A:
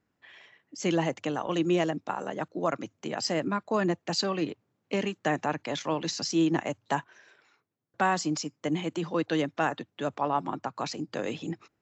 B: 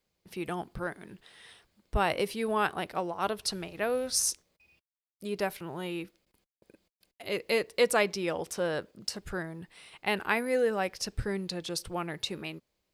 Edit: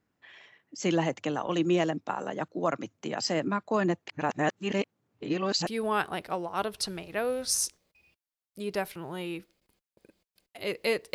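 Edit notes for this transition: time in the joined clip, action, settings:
A
0:04.08–0:05.67: reverse
0:05.67: continue with B from 0:02.32

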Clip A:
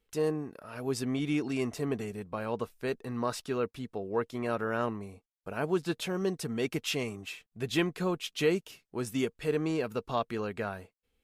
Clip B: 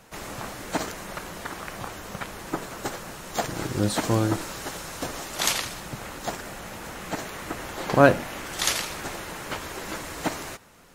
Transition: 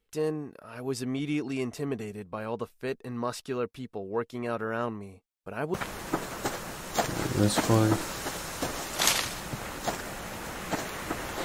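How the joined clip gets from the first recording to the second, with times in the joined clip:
clip A
0:05.74: continue with clip B from 0:02.14

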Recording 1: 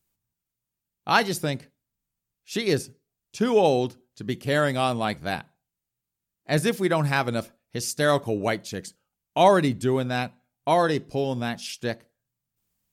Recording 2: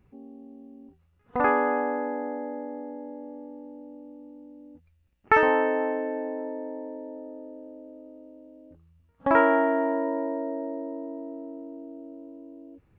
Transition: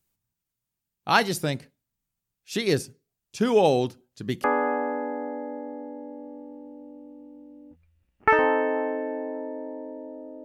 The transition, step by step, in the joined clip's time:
recording 1
0:04.44: continue with recording 2 from 0:01.48

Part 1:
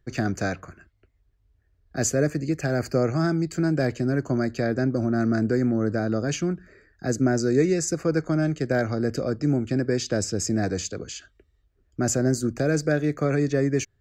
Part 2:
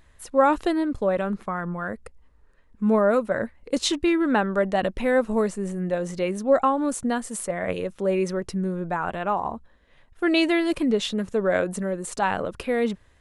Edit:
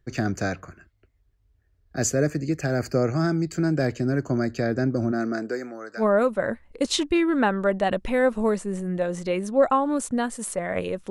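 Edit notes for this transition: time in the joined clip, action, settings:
part 1
0:05.11–0:06.05: high-pass filter 200 Hz → 1,300 Hz
0:06.01: continue with part 2 from 0:02.93, crossfade 0.08 s

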